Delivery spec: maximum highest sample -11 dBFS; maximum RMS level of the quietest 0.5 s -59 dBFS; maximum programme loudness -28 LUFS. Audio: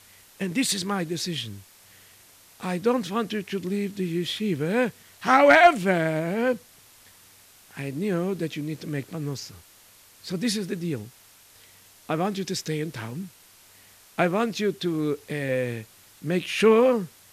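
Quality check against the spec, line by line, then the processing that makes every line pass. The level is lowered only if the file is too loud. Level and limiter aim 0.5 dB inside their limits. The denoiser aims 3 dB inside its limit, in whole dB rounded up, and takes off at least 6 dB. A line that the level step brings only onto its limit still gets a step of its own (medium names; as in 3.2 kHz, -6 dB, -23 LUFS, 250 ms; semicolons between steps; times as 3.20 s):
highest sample -6.0 dBFS: fail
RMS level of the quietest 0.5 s -54 dBFS: fail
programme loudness -25.0 LUFS: fail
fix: noise reduction 6 dB, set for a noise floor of -54 dBFS; trim -3.5 dB; peak limiter -11.5 dBFS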